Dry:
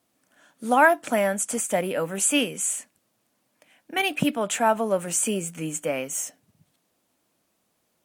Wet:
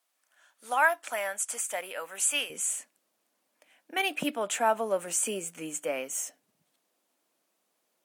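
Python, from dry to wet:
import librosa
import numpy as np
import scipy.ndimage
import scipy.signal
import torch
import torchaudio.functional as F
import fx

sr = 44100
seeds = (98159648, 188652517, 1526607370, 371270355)

y = fx.highpass(x, sr, hz=fx.steps((0.0, 870.0), (2.5, 320.0)), slope=12)
y = y * 10.0 ** (-4.0 / 20.0)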